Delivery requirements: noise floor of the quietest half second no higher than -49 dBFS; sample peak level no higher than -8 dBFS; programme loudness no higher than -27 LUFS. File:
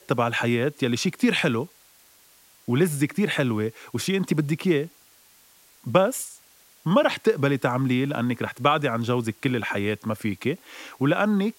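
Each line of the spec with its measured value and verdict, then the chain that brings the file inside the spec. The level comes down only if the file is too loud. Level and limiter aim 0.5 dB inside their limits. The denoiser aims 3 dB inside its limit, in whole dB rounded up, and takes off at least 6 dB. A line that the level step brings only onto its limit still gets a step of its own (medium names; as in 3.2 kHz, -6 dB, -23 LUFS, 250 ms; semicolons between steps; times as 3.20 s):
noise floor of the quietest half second -56 dBFS: pass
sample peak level -4.0 dBFS: fail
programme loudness -24.5 LUFS: fail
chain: trim -3 dB; peak limiter -8.5 dBFS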